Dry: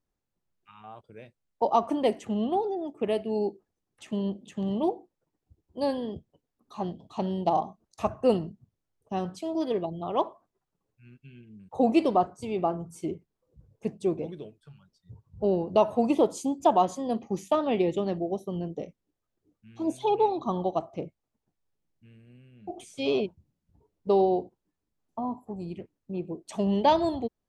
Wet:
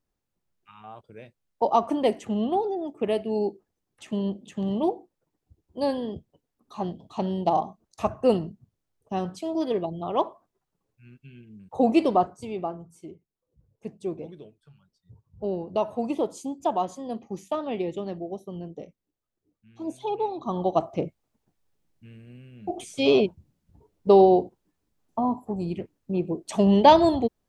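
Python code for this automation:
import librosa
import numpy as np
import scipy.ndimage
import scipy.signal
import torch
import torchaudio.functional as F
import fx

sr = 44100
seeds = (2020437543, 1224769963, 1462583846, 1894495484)

y = fx.gain(x, sr, db=fx.line((12.24, 2.0), (13.11, -10.5), (14.11, -4.0), (20.33, -4.0), (20.83, 7.0)))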